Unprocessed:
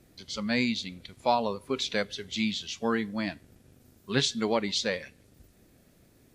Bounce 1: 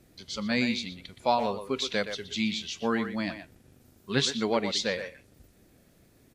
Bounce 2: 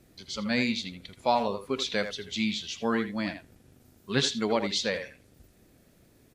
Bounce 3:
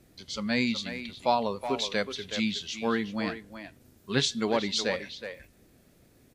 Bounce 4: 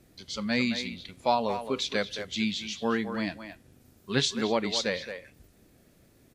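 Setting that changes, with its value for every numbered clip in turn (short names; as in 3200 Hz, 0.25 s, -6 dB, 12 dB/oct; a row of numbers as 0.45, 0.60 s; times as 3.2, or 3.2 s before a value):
speakerphone echo, time: 120, 80, 370, 220 ms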